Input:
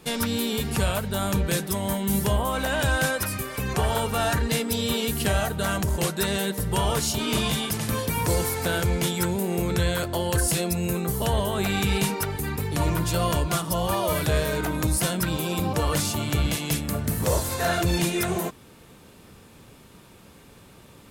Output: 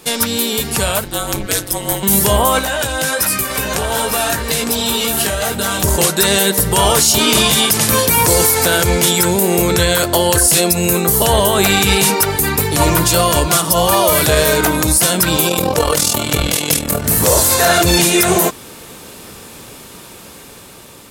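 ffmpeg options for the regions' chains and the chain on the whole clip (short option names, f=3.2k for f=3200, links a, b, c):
-filter_complex "[0:a]asettb=1/sr,asplit=3[a][b][c];[a]atrim=end=1.044[d];[b]atrim=start=1.04:end=2.03,asetpts=PTS-STARTPTS,afade=t=in:d=0.004:c=qsin,afade=t=out:st=0.986:d=0.004:c=qsin,tremolo=f=190:d=0.947,afreqshift=-53[e];[c]atrim=start=2.026[f];[d][e]acrossfade=d=0.004:c1=hsin:c2=qsin[g];[g][f]acrossfade=d=0.004:c1=qsin:c2=hsin,asettb=1/sr,asplit=3[h][i][j];[h]atrim=end=2.594[k];[i]atrim=start=2.59:end=5.84,asetpts=PTS-STARTPTS,afade=t=in:d=0.004:c=qsin,afade=t=out:st=3.246:d=0.004:c=qsin,flanger=delay=16:depth=3:speed=1.3,acompressor=threshold=-29dB:ratio=5:attack=3.2:release=140:knee=1:detection=peak,aecho=1:1:908:0.422,atrim=end_sample=143325[l];[j]atrim=start=5.836[m];[k][l]acrossfade=d=0.004:c1=hsin:c2=qsin[n];[n][m]acrossfade=d=0.004:c1=qsin:c2=hsin,asettb=1/sr,asplit=3[o][p][q];[o]atrim=end=15.494[r];[p]atrim=start=15.49:end=17.04,asetpts=PTS-STARTPTS,afade=t=in:d=0.004:c=qsin,afade=t=out:st=1.546:d=0.004:c=qsin,equalizer=f=500:w=6:g=8,tremolo=f=41:d=0.75[s];[q]atrim=start=17.036[t];[r][s]acrossfade=d=0.004:c1=hsin:c2=qsin[u];[u][t]acrossfade=d=0.004:c1=qsin:c2=hsin,bass=f=250:g=-7,treble=f=4k:g=6,dynaudnorm=f=810:g=5:m=8dB,alimiter=level_in=9.5dB:limit=-1dB:release=50:level=0:latency=1,volume=-1dB"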